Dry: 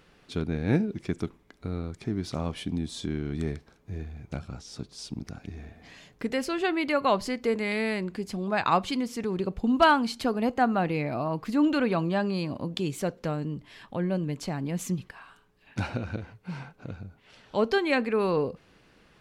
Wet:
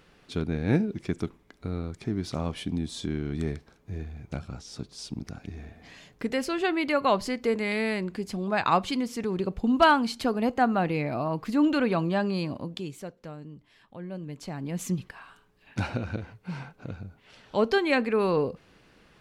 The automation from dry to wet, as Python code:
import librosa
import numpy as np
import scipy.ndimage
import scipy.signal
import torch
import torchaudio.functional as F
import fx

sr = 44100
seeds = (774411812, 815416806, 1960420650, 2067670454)

y = fx.gain(x, sr, db=fx.line((12.47, 0.5), (13.12, -11.0), (13.99, -11.0), (14.93, 1.0)))